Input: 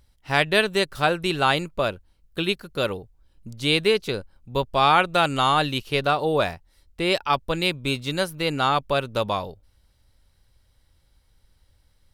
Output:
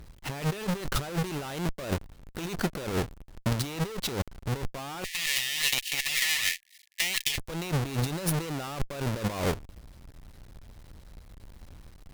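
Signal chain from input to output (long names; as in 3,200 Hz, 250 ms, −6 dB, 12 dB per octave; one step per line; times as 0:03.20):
each half-wave held at its own peak
0:05.04–0:07.38: linear-phase brick-wall high-pass 1,700 Hz
tube saturation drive 17 dB, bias 0.35
compressor whose output falls as the input rises −33 dBFS, ratio −1
level +1.5 dB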